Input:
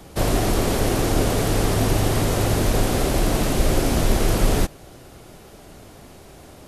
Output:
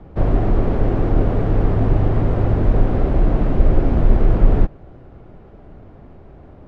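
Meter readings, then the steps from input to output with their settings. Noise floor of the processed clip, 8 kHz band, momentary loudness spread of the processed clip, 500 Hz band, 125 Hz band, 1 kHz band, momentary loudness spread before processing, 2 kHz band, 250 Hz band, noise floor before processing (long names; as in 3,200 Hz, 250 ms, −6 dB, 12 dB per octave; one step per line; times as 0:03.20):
−43 dBFS, below −30 dB, 2 LU, −0.5 dB, +4.5 dB, −2.5 dB, 1 LU, −7.5 dB, +1.5 dB, −45 dBFS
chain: low-pass filter 1,800 Hz 12 dB per octave
spectral tilt −2 dB per octave
level −2.5 dB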